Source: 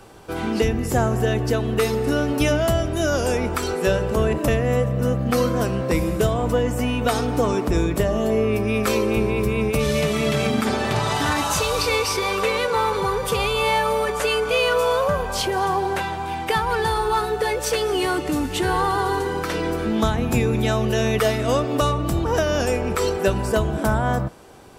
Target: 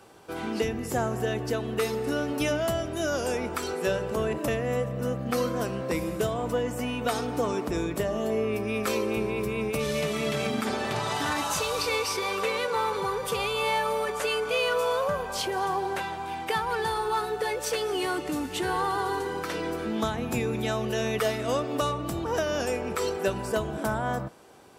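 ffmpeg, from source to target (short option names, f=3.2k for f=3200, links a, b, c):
-af "highpass=f=180:p=1,volume=-6dB"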